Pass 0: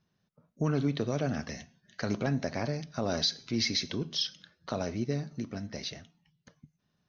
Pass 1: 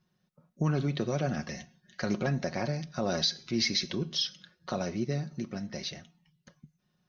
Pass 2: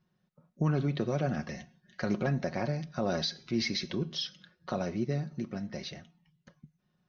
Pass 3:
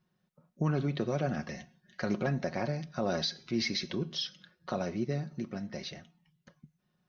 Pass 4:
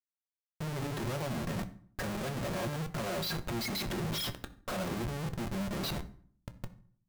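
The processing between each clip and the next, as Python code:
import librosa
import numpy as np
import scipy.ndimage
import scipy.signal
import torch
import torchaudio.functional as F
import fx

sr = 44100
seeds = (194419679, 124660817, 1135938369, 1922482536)

y1 = x + 0.48 * np.pad(x, (int(5.5 * sr / 1000.0), 0))[:len(x)]
y2 = fx.lowpass(y1, sr, hz=2800.0, slope=6)
y3 = fx.low_shelf(y2, sr, hz=160.0, db=-3.5)
y4 = fx.spec_gate(y3, sr, threshold_db=-15, keep='strong')
y4 = fx.schmitt(y4, sr, flips_db=-47.0)
y4 = fx.rev_fdn(y4, sr, rt60_s=0.52, lf_ratio=1.4, hf_ratio=0.75, size_ms=51.0, drr_db=8.0)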